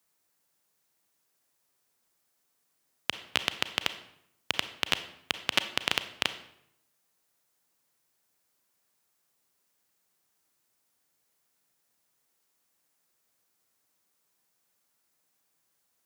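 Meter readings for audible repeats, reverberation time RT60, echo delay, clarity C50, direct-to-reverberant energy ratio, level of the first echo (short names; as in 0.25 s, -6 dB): none, 0.75 s, none, 12.5 dB, 11.0 dB, none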